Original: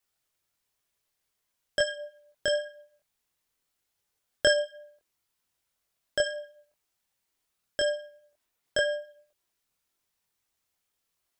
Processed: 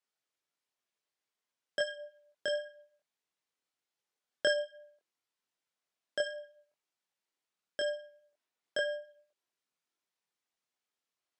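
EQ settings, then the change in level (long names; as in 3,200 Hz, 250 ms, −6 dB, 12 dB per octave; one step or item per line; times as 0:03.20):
high-pass filter 200 Hz 12 dB per octave
high-frequency loss of the air 55 metres
−6.0 dB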